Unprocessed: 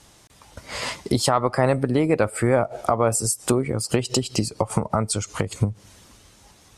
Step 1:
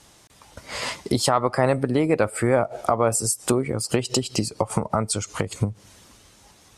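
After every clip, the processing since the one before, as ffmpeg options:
ffmpeg -i in.wav -af "lowshelf=frequency=130:gain=-4" out.wav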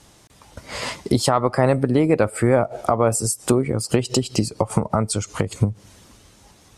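ffmpeg -i in.wav -af "lowshelf=frequency=500:gain=5" out.wav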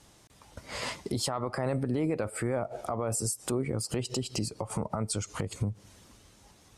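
ffmpeg -i in.wav -af "alimiter=limit=-13.5dB:level=0:latency=1:release=37,volume=-7dB" out.wav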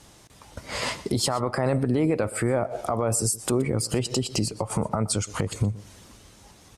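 ffmpeg -i in.wav -af "aecho=1:1:122:0.112,volume=6.5dB" out.wav

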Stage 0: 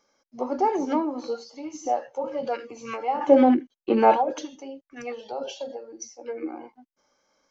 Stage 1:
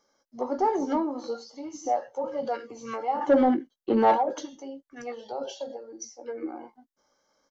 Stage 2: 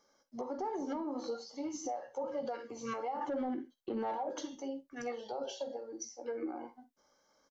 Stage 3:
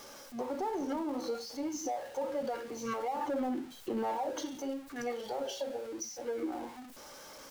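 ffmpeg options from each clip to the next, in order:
ffmpeg -i in.wav -filter_complex "[0:a]asplit=2[link_01][link_02];[link_02]adelay=18,volume=-11dB[link_03];[link_01][link_03]amix=inputs=2:normalize=0,asoftclip=type=tanh:threshold=-11dB,equalizer=frequency=2500:width_type=o:width=0.24:gain=-14,volume=-1.5dB" out.wav
ffmpeg -i in.wav -af "aecho=1:1:47|63:0.141|0.133,acompressor=threshold=-25dB:ratio=5,alimiter=level_in=4.5dB:limit=-24dB:level=0:latency=1:release=296,volume=-4.5dB,volume=-1dB" out.wav
ffmpeg -i in.wav -af "aeval=exprs='val(0)+0.5*0.00473*sgn(val(0))':channel_layout=same,volume=1.5dB" out.wav

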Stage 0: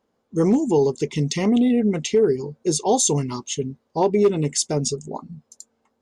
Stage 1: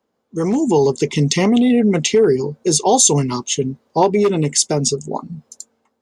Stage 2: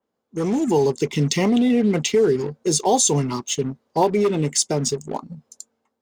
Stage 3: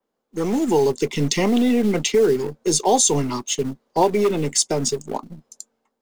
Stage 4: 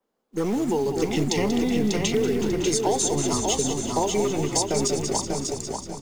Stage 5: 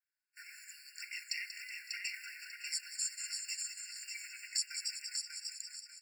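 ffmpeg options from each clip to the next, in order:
ffmpeg -i in.wav -filter_complex "[0:a]lowshelf=frequency=76:gain=-8.5,acrossover=split=150|660|3200[link_01][link_02][link_03][link_04];[link_02]alimiter=limit=-19dB:level=0:latency=1[link_05];[link_01][link_05][link_03][link_04]amix=inputs=4:normalize=0,dynaudnorm=framelen=130:gausssize=9:maxgain=11.5dB" out.wav
ffmpeg -i in.wav -filter_complex "[0:a]asplit=2[link_01][link_02];[link_02]acrusher=bits=3:mix=0:aa=0.5,volume=-7.5dB[link_03];[link_01][link_03]amix=inputs=2:normalize=0,adynamicequalizer=threshold=0.0355:dfrequency=3800:dqfactor=0.7:tfrequency=3800:tqfactor=0.7:attack=5:release=100:ratio=0.375:range=2:mode=cutabove:tftype=highshelf,volume=-7dB" out.wav
ffmpeg -i in.wav -filter_complex "[0:a]acrossover=split=200|480|2400[link_01][link_02][link_03][link_04];[link_01]aeval=exprs='max(val(0),0)':channel_layout=same[link_05];[link_02]acrusher=bits=5:mode=log:mix=0:aa=0.000001[link_06];[link_05][link_06][link_03][link_04]amix=inputs=4:normalize=0,volume=1dB" out.wav
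ffmpeg -i in.wav -filter_complex "[0:a]asplit=2[link_01][link_02];[link_02]asplit=6[link_03][link_04][link_05][link_06][link_07][link_08];[link_03]adelay=186,afreqshift=-40,volume=-9dB[link_09];[link_04]adelay=372,afreqshift=-80,volume=-14.4dB[link_10];[link_05]adelay=558,afreqshift=-120,volume=-19.7dB[link_11];[link_06]adelay=744,afreqshift=-160,volume=-25.1dB[link_12];[link_07]adelay=930,afreqshift=-200,volume=-30.4dB[link_13];[link_08]adelay=1116,afreqshift=-240,volume=-35.8dB[link_14];[link_09][link_10][link_11][link_12][link_13][link_14]amix=inputs=6:normalize=0[link_15];[link_01][link_15]amix=inputs=2:normalize=0,acompressor=threshold=-21dB:ratio=6,asplit=2[link_16][link_17];[link_17]aecho=0:1:593|1186|1779|2372:0.596|0.167|0.0467|0.0131[link_18];[link_16][link_18]amix=inputs=2:normalize=0" out.wav
ffmpeg -i in.wav -af "afftfilt=real='re*eq(mod(floor(b*sr/1024/1400),2),1)':imag='im*eq(mod(floor(b*sr/1024/1400),2),1)':win_size=1024:overlap=0.75,volume=-6.5dB" out.wav

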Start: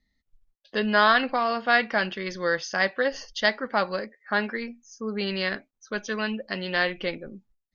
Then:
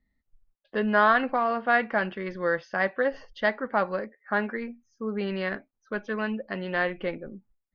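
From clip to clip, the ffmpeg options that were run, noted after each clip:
ffmpeg -i in.wav -af "lowpass=1800" out.wav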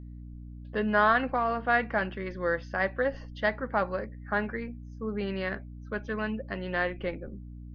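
ffmpeg -i in.wav -af "aeval=exprs='val(0)+0.0112*(sin(2*PI*60*n/s)+sin(2*PI*2*60*n/s)/2+sin(2*PI*3*60*n/s)/3+sin(2*PI*4*60*n/s)/4+sin(2*PI*5*60*n/s)/5)':channel_layout=same,volume=-2.5dB" out.wav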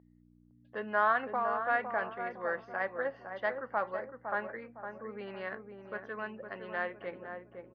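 ffmpeg -i in.wav -filter_complex "[0:a]bandpass=frequency=1000:width_type=q:width=0.78:csg=0,asplit=2[link_01][link_02];[link_02]adelay=509,lowpass=frequency=990:poles=1,volume=-5.5dB,asplit=2[link_03][link_04];[link_04]adelay=509,lowpass=frequency=990:poles=1,volume=0.43,asplit=2[link_05][link_06];[link_06]adelay=509,lowpass=frequency=990:poles=1,volume=0.43,asplit=2[link_07][link_08];[link_08]adelay=509,lowpass=frequency=990:poles=1,volume=0.43,asplit=2[link_09][link_10];[link_10]adelay=509,lowpass=frequency=990:poles=1,volume=0.43[link_11];[link_01][link_03][link_05][link_07][link_09][link_11]amix=inputs=6:normalize=0,volume=-3.5dB" out.wav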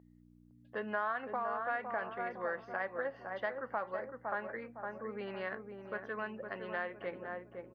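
ffmpeg -i in.wav -af "acompressor=threshold=-35dB:ratio=3,volume=1dB" out.wav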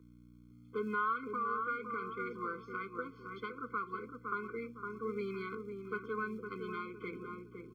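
ffmpeg -i in.wav -filter_complex "[0:a]acrossover=split=160|730|2300[link_01][link_02][link_03][link_04];[link_01]acrusher=bits=2:mode=log:mix=0:aa=0.000001[link_05];[link_05][link_02][link_03][link_04]amix=inputs=4:normalize=0,afftfilt=real='re*eq(mod(floor(b*sr/1024/510),2),0)':imag='im*eq(mod(floor(b*sr/1024/510),2),0)':win_size=1024:overlap=0.75,volume=4dB" out.wav

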